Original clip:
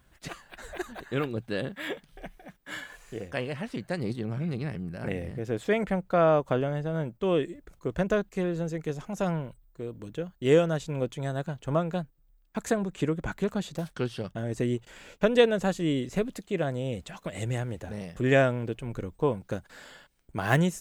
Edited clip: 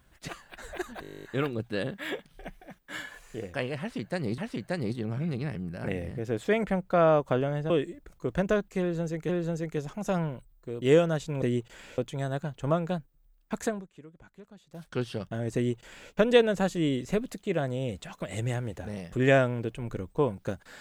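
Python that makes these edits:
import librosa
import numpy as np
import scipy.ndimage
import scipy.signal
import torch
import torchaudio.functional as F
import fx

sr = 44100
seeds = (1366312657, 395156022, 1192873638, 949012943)

y = fx.edit(x, sr, fx.stutter(start_s=1.02, slice_s=0.02, count=12),
    fx.repeat(start_s=3.58, length_s=0.58, count=2),
    fx.cut(start_s=6.9, length_s=0.41),
    fx.repeat(start_s=8.41, length_s=0.49, count=2),
    fx.cut(start_s=9.93, length_s=0.48),
    fx.fade_down_up(start_s=12.62, length_s=1.43, db=-21.5, fade_s=0.31),
    fx.duplicate(start_s=14.59, length_s=0.56, to_s=11.02), tone=tone)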